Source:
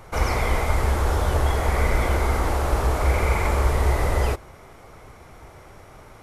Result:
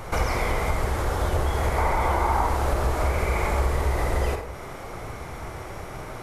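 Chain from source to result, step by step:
0:01.78–0:02.47: parametric band 910 Hz +13 dB 0.68 octaves
downward compressor 3 to 1, threshold −33 dBFS, peak gain reduction 14.5 dB
on a send: convolution reverb RT60 0.75 s, pre-delay 37 ms, DRR 4.5 dB
on the sum: level +8 dB

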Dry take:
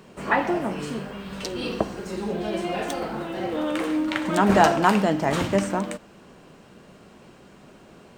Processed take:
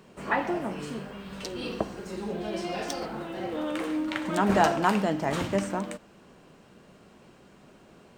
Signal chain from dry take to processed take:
0:02.56–0:03.06: parametric band 5,200 Hz +12 dB 0.5 octaves
level −5 dB

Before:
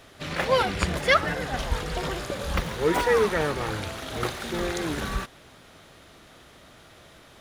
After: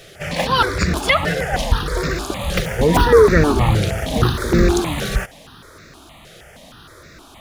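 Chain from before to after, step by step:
0:02.78–0:04.80: low-shelf EQ 350 Hz +11 dB
boost into a limiter +11 dB
step-sequenced phaser 6.4 Hz 260–3,100 Hz

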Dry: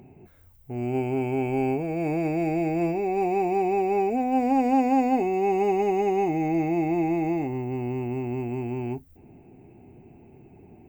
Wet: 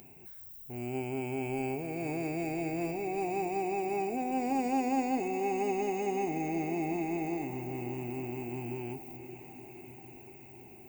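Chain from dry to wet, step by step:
first-order pre-emphasis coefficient 0.8
feedback delay with all-pass diffusion 499 ms, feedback 68%, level −13 dB
one half of a high-frequency compander encoder only
level +4.5 dB

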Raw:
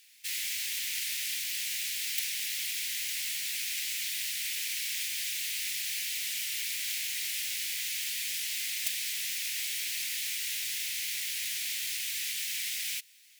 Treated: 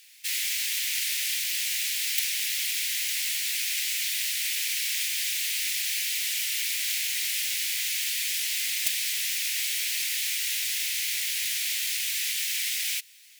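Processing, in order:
Butterworth high-pass 350 Hz 48 dB per octave
level +5.5 dB

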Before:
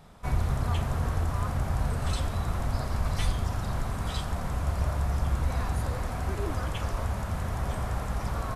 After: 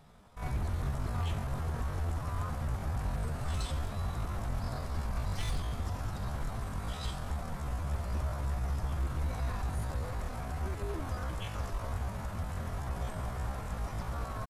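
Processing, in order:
tempo change 0.59×
wave folding −20.5 dBFS
level −5.5 dB

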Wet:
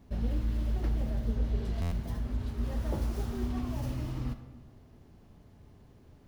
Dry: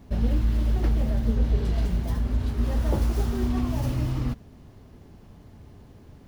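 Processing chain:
comb and all-pass reverb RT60 1.3 s, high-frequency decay 0.55×, pre-delay 15 ms, DRR 9.5 dB
buffer that repeats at 0:01.81, samples 512, times 8
level −8 dB

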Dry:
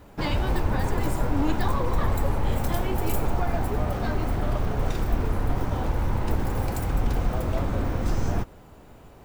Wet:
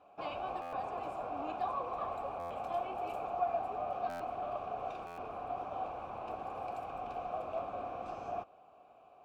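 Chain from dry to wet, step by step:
formant filter a
buffer that repeats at 0:00.61/0:02.39/0:04.09/0:05.06, samples 512, times 9
level +1.5 dB

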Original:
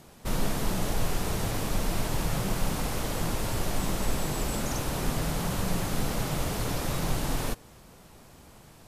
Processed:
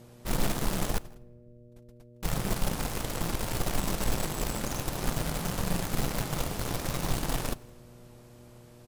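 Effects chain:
0:00.98–0:02.23: noise gate −20 dBFS, range −51 dB
hum with harmonics 120 Hz, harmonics 5, −48 dBFS −4 dB per octave
in parallel at −5.5 dB: bit reduction 4 bits
on the sum: slap from a distant wall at 28 metres, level −25 dB
on a send at −20 dB: convolution reverb RT60 1.4 s, pre-delay 6 ms
on the sum: level −5 dB

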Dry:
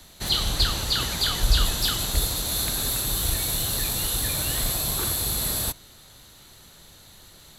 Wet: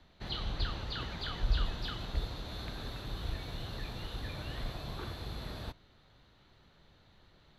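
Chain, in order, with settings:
high-frequency loss of the air 290 metres
level −9 dB

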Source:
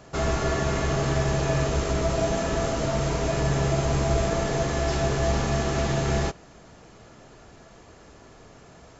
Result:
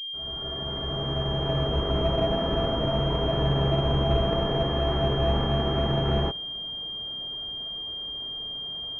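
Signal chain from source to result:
fade in at the beginning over 2.00 s
switching amplifier with a slow clock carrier 3,200 Hz

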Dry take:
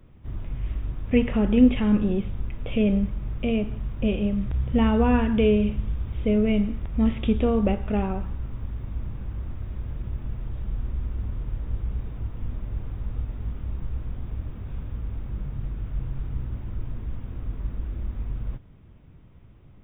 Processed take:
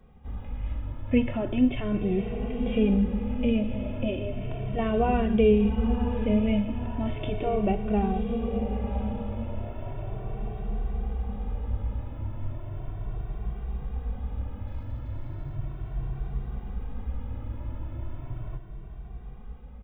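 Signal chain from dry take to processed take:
0:14.67–0:15.55: lower of the sound and its delayed copy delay 0.53 ms
parametric band 760 Hz +8 dB 1 octave
feedback delay with all-pass diffusion 1,006 ms, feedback 52%, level −8.5 dB
dynamic equaliser 1,100 Hz, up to −6 dB, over −37 dBFS, Q 0.95
barber-pole flanger 2.1 ms +0.36 Hz

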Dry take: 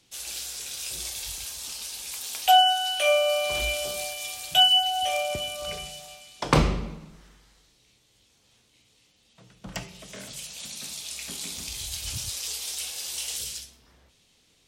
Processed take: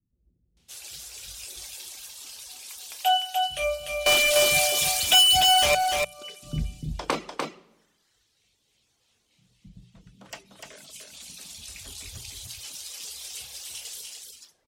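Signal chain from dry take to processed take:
multiband delay without the direct sound lows, highs 570 ms, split 230 Hz
0:04.06–0:05.75: leveller curve on the samples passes 5
reverb reduction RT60 1.2 s
mains-hum notches 60/120/180 Hz
on a send: single-tap delay 297 ms −4 dB
on the sum: level −4.5 dB

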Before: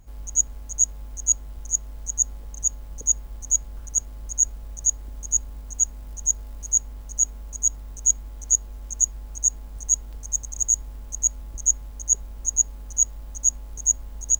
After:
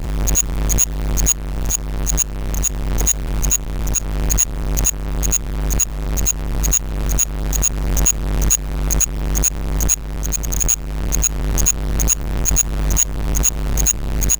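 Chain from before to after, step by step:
each half-wave held at its own peak
background raised ahead of every attack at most 27 dB per second

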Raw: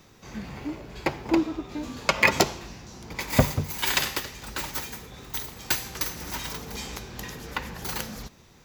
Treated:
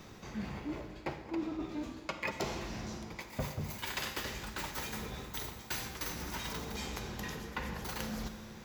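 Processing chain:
high-shelf EQ 4,300 Hz −5.5 dB
reversed playback
downward compressor 4 to 1, threshold −42 dBFS, peak gain reduction 24 dB
reversed playback
convolution reverb RT60 2.7 s, pre-delay 5 ms, DRR 8.5 dB
level +3.5 dB

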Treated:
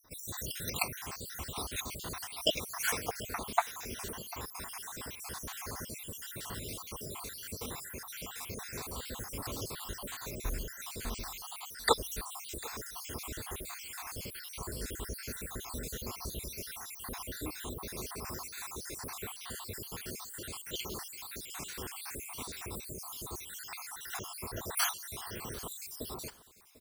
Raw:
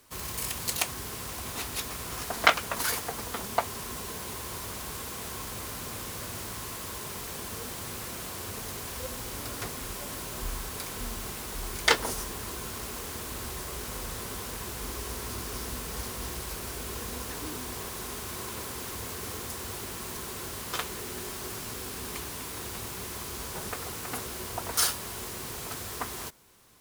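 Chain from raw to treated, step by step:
time-frequency cells dropped at random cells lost 67%
repeating echo 746 ms, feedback 24%, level −19.5 dB

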